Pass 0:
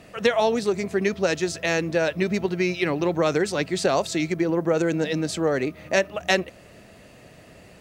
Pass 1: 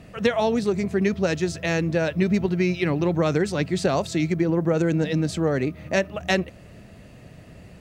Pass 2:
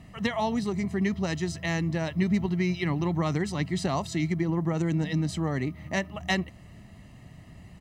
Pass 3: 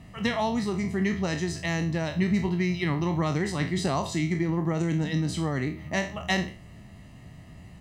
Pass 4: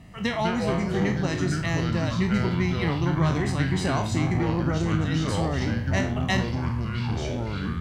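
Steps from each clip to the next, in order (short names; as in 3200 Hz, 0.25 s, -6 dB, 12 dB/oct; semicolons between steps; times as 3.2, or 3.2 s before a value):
tone controls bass +10 dB, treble -2 dB; gain -2 dB
comb 1 ms, depth 62%; gain -5.5 dB
spectral trails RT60 0.38 s
echoes that change speed 0.116 s, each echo -5 st, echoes 3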